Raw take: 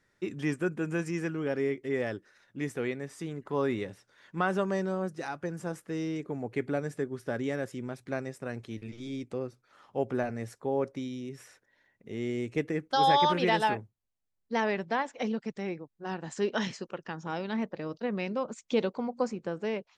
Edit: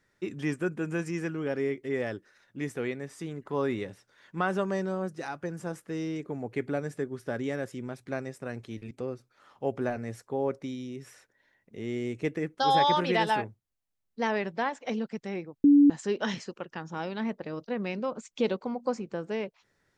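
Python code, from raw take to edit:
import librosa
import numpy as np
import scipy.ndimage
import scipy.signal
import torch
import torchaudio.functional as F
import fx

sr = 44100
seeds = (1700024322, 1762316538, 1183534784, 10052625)

y = fx.edit(x, sr, fx.cut(start_s=8.91, length_s=0.33),
    fx.bleep(start_s=15.97, length_s=0.26, hz=287.0, db=-14.0), tone=tone)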